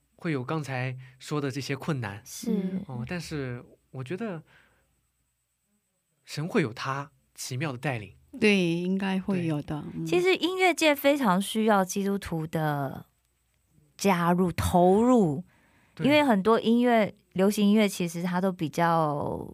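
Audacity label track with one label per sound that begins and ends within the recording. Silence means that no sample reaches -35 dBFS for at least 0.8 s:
6.300000	12.990000	sound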